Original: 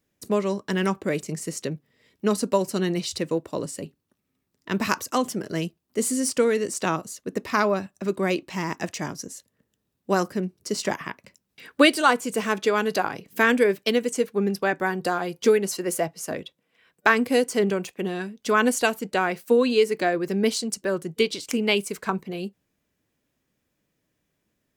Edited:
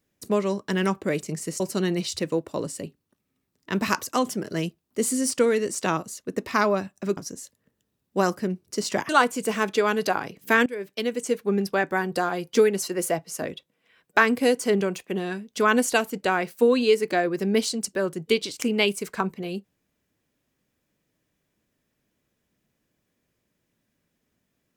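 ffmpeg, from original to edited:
-filter_complex "[0:a]asplit=5[s0][s1][s2][s3][s4];[s0]atrim=end=1.602[s5];[s1]atrim=start=2.588:end=8.162[s6];[s2]atrim=start=9.098:end=11.022[s7];[s3]atrim=start=11.978:end=13.55,asetpts=PTS-STARTPTS,afade=t=out:st=1.568:d=0.004:c=hsin:silence=0.105925[s8];[s4]atrim=start=13.55,asetpts=PTS-STARTPTS,afade=t=in:d=0.76:silence=0.105925[s9];[s5][s6]acrossfade=d=0.004:c1=hsin:c2=hsin[s10];[s10][s7]acrossfade=d=0.004:c1=hsin:c2=hsin[s11];[s8][s9]concat=n=2:v=0:a=1[s12];[s11][s12]acrossfade=d=0.004:c1=hsin:c2=hsin"

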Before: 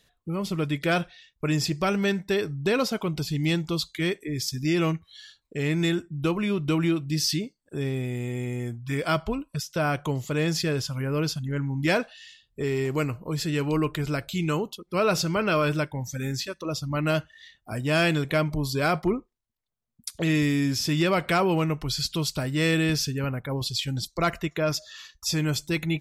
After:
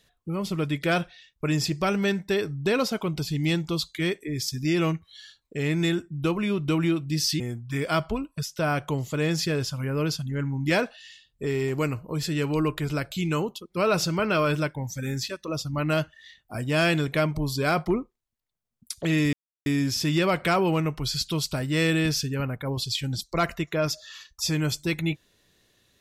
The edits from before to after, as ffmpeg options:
-filter_complex "[0:a]asplit=3[s0][s1][s2];[s0]atrim=end=7.402[s3];[s1]atrim=start=8.568:end=20.5,asetpts=PTS-STARTPTS,afade=t=out:st=11.928:d=0.004:c=hsin,apad=pad_dur=0.33[s4];[s2]atrim=start=20.5,asetpts=PTS-STARTPTS,afade=t=in:d=0.004:c=hsin[s5];[s4][s5]concat=n=2:v=0:a=1[s6];[s3][s6]acrossfade=d=0.004:c1=hsin:c2=hsin"

